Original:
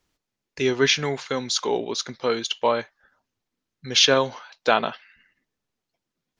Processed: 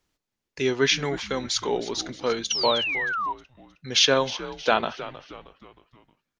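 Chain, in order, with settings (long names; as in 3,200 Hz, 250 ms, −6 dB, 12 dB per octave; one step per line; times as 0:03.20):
echo with shifted repeats 313 ms, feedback 45%, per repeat −93 Hz, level −14.5 dB
sound drawn into the spectrogram fall, 0:02.50–0:03.33, 920–6,100 Hz −25 dBFS
level −2 dB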